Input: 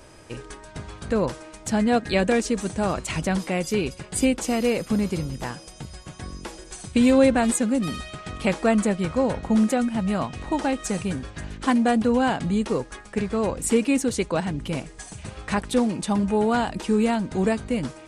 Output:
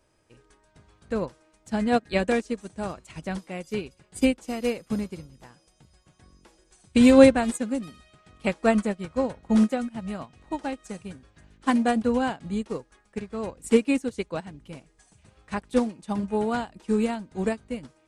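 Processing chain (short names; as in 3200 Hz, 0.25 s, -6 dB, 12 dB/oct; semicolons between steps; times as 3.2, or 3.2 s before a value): upward expander 2.5:1, over -30 dBFS; gain +5 dB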